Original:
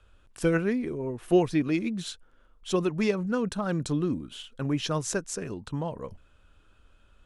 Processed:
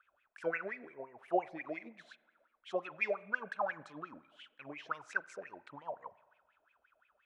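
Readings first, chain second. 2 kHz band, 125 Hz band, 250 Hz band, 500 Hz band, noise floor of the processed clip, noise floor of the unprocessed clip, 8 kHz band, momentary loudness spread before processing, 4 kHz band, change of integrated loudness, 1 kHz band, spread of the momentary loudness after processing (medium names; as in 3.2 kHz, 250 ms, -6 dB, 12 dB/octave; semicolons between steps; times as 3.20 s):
-1.5 dB, -29.0 dB, -22.0 dB, -11.0 dB, -78 dBFS, -60 dBFS, under -25 dB, 12 LU, -18.5 dB, -11.0 dB, -3.5 dB, 18 LU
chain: wah-wah 5.7 Hz 600–2400 Hz, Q 14; spring tank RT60 1.3 s, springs 37/43 ms, chirp 75 ms, DRR 19.5 dB; trim +9 dB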